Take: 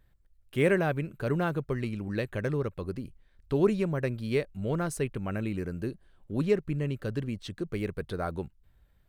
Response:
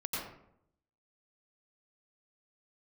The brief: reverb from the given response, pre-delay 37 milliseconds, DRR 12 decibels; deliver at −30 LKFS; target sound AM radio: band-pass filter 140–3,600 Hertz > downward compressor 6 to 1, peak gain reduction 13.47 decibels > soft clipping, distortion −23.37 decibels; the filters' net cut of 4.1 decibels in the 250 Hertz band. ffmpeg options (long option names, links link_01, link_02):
-filter_complex "[0:a]equalizer=frequency=250:width_type=o:gain=-5,asplit=2[link_01][link_02];[1:a]atrim=start_sample=2205,adelay=37[link_03];[link_02][link_03]afir=irnorm=-1:irlink=0,volume=-15.5dB[link_04];[link_01][link_04]amix=inputs=2:normalize=0,highpass=140,lowpass=3600,acompressor=threshold=-34dB:ratio=6,asoftclip=threshold=-27dB,volume=10.5dB"